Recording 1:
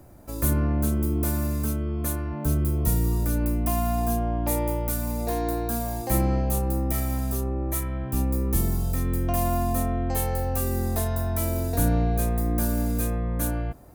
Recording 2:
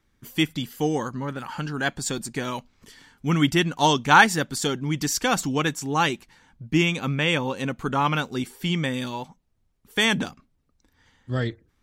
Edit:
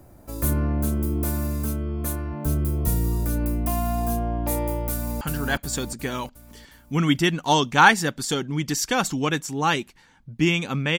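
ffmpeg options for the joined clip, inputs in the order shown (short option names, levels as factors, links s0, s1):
-filter_complex "[0:a]apad=whole_dur=10.98,atrim=end=10.98,atrim=end=5.212[s0];[1:a]atrim=start=1.538:end=7.31[s1];[s0][s1]acrossfade=d=0.004:c1=hsin:c2=hsin,asplit=2[s2][s3];[s3]afade=t=in:st=4.91:d=0.01,afade=t=out:st=5.21:d=0.01,aecho=0:1:360|720|1080|1440|1800|2160|2520:0.794328|0.397164|0.198582|0.099291|0.0496455|0.0248228|0.0124114[s4];[s2][s4]amix=inputs=2:normalize=0"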